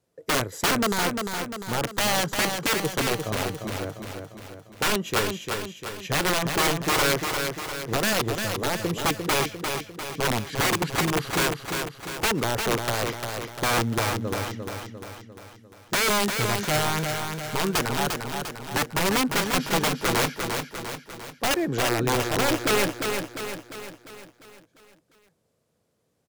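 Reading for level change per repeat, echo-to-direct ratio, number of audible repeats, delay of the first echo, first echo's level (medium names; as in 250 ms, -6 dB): -5.5 dB, -4.0 dB, 6, 349 ms, -5.5 dB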